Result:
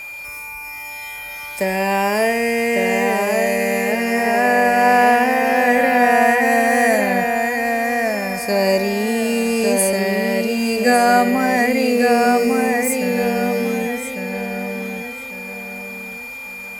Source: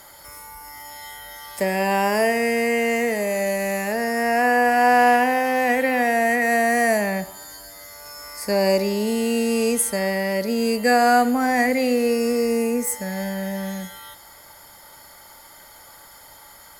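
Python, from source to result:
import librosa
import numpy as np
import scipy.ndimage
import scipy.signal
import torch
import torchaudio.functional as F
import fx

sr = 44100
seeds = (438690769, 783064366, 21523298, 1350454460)

y = fx.echo_filtered(x, sr, ms=1151, feedback_pct=35, hz=4700.0, wet_db=-3.0)
y = y + 10.0 ** (-32.0 / 20.0) * np.sin(2.0 * np.pi * 2400.0 * np.arange(len(y)) / sr)
y = y * 10.0 ** (2.0 / 20.0)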